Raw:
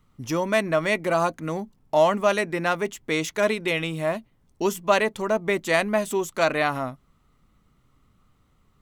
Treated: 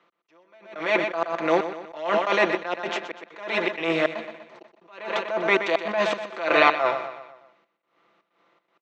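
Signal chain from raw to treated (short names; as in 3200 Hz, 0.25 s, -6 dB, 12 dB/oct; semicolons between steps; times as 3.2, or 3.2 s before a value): per-bin compression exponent 0.6; gate with hold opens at -33 dBFS; LPF 6200 Hz 24 dB/oct; comb 5.9 ms, depth 70%; on a send at -23 dB: reverb RT60 0.30 s, pre-delay 0.147 s; on the sum: step gate "x..xxxx.xxx.x.xx" 159 bpm -60 dB; HPF 210 Hz 12 dB/oct; three-band isolator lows -13 dB, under 310 Hz, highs -15 dB, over 4500 Hz; feedback echo 0.123 s, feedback 48%, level -12 dB; attack slew limiter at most 100 dB/s; gain +3.5 dB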